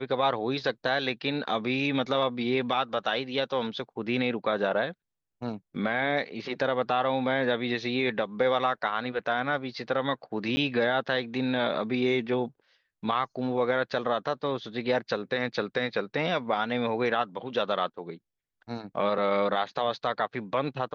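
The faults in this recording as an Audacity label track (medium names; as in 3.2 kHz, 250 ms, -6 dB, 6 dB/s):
10.560000	10.570000	dropout 10 ms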